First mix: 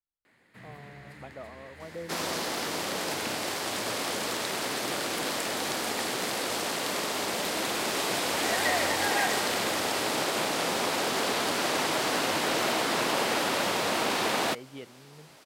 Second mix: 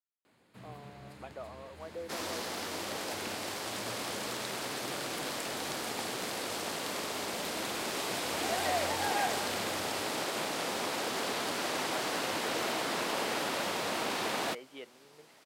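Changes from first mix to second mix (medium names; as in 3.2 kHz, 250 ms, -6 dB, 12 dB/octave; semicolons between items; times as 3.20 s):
speech: add high-pass 410 Hz 12 dB/octave; first sound: add peaking EQ 1.9 kHz -12.5 dB 0.52 oct; second sound -6.0 dB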